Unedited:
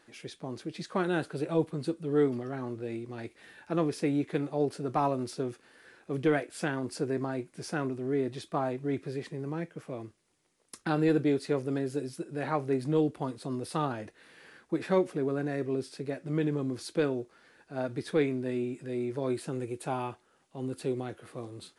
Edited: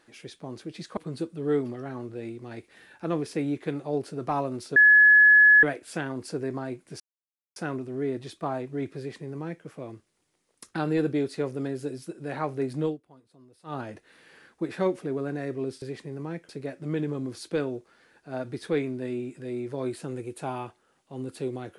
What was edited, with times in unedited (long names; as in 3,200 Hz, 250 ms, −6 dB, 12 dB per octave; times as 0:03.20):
0:00.97–0:01.64: remove
0:05.43–0:06.30: beep over 1,700 Hz −12 dBFS
0:07.67: splice in silence 0.56 s
0:09.09–0:09.76: duplicate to 0:15.93
0:12.95–0:13.90: duck −20.5 dB, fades 0.14 s